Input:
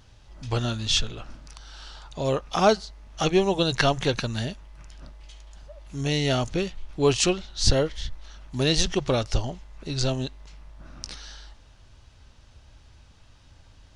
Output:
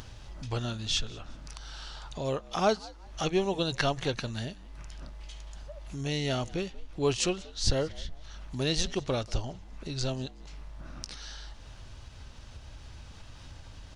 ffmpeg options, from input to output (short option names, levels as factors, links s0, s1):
-filter_complex "[0:a]acompressor=mode=upward:threshold=0.0447:ratio=2.5,asplit=2[s0][s1];[s1]asplit=2[s2][s3];[s2]adelay=186,afreqshift=79,volume=0.0708[s4];[s3]adelay=372,afreqshift=158,volume=0.0226[s5];[s4][s5]amix=inputs=2:normalize=0[s6];[s0][s6]amix=inputs=2:normalize=0,volume=0.473"